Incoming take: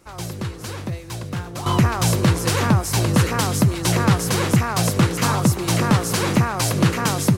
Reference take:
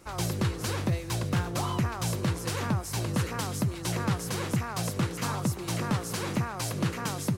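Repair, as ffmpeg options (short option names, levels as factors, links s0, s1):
-af "asetnsamples=n=441:p=0,asendcmd='1.66 volume volume -11.5dB',volume=1"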